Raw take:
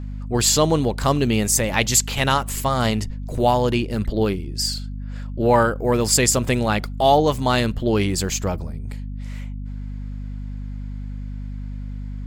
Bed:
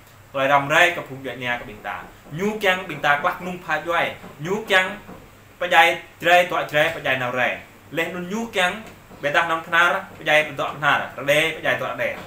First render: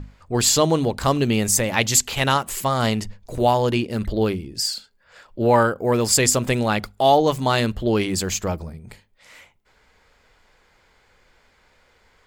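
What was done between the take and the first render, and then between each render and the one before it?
mains-hum notches 50/100/150/200/250 Hz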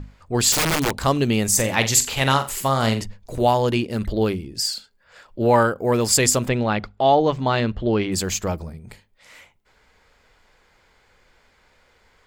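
0:00.52–0:00.97: wrap-around overflow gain 14.5 dB
0:01.49–0:03.02: flutter between parallel walls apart 7.6 metres, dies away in 0.27 s
0:06.48–0:08.12: high-frequency loss of the air 180 metres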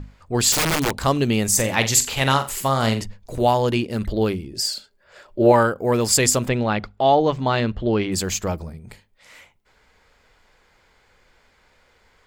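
0:04.53–0:05.52: hollow resonant body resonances 380/590 Hz, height 10 dB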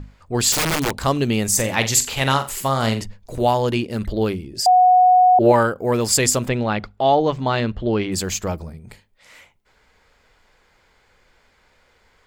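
0:04.66–0:05.39: beep over 733 Hz −9 dBFS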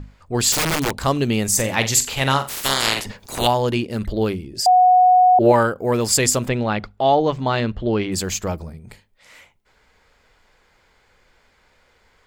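0:02.48–0:03.46: ceiling on every frequency bin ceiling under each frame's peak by 29 dB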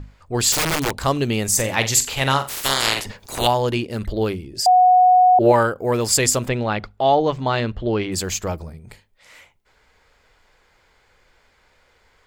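parametric band 210 Hz −3.5 dB 0.76 octaves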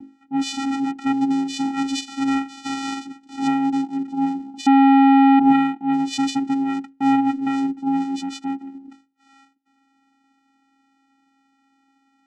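channel vocoder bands 4, square 272 Hz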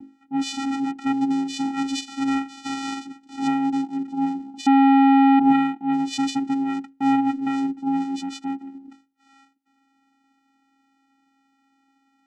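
level −2 dB

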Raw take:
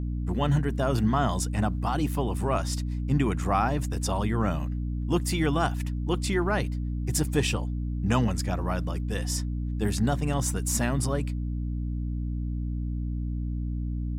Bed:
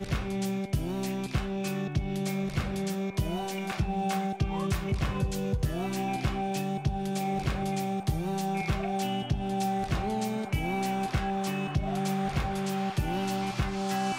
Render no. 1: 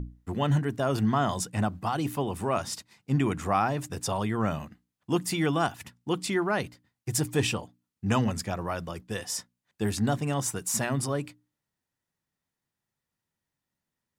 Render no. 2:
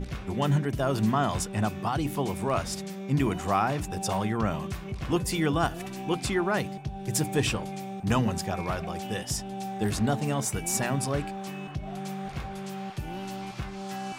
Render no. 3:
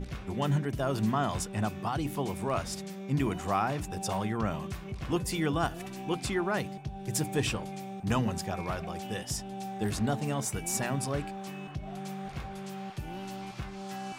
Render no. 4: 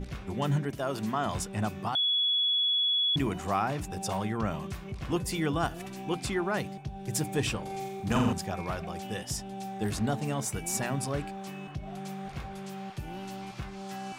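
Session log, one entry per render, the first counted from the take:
mains-hum notches 60/120/180/240/300 Hz
mix in bed −6 dB
level −3.5 dB
0:00.70–0:01.26: high-pass filter 270 Hz 6 dB per octave; 0:01.95–0:03.16: beep over 3,380 Hz −23.5 dBFS; 0:07.61–0:08.33: flutter between parallel walls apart 7.5 metres, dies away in 0.73 s

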